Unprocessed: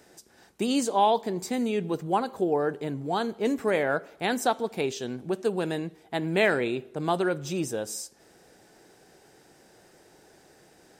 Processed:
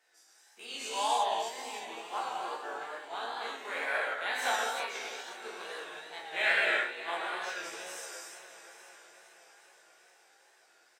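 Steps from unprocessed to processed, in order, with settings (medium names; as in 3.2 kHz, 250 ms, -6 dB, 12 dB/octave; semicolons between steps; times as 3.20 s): every event in the spectrogram widened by 60 ms; high-pass 1.1 kHz 12 dB/octave; treble shelf 6.1 kHz -9 dB; doubling 17 ms -5 dB; echo that smears into a reverb 586 ms, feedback 56%, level -11 dB; gated-style reverb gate 380 ms flat, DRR -5 dB; wow and flutter 62 cents; upward expansion 1.5:1, over -31 dBFS; trim -7.5 dB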